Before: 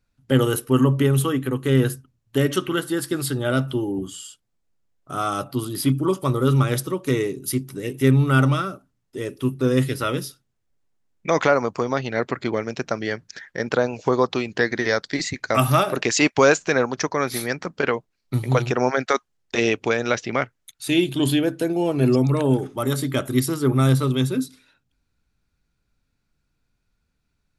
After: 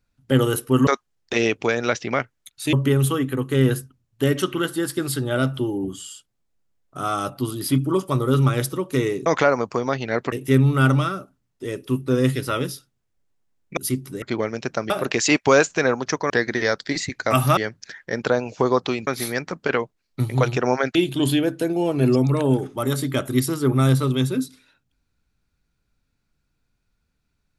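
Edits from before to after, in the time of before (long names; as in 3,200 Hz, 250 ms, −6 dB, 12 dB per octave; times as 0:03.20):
0:07.40–0:07.85: swap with 0:11.30–0:12.36
0:13.04–0:14.54: swap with 0:15.81–0:17.21
0:19.09–0:20.95: move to 0:00.87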